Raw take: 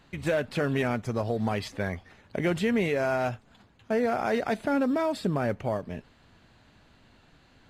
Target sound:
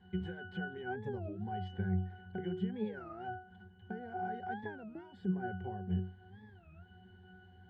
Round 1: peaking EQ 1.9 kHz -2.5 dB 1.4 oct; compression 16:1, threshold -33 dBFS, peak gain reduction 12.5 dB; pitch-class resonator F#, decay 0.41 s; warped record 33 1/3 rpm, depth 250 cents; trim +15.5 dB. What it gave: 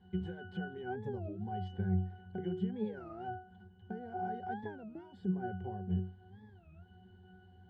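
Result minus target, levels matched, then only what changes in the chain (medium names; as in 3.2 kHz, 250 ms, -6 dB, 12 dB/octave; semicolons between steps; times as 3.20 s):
2 kHz band -5.0 dB
change: peaking EQ 1.9 kHz +4.5 dB 1.4 oct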